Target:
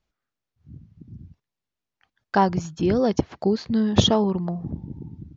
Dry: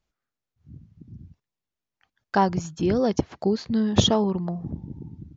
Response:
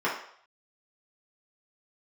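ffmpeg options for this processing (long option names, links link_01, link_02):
-af "lowpass=6400,volume=1.5dB"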